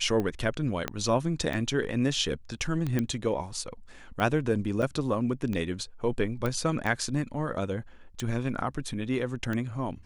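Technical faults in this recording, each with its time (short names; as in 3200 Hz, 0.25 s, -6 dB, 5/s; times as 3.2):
tick 45 rpm -19 dBFS
0.88 pop -14 dBFS
2.99 pop -15 dBFS
4.82–4.83 gap 6 ms
6.46 pop -17 dBFS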